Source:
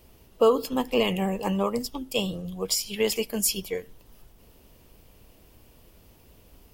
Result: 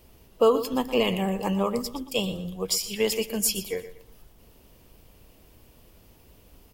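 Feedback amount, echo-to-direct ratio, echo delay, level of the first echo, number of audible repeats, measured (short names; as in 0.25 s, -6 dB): 30%, -13.0 dB, 0.119 s, -13.5 dB, 3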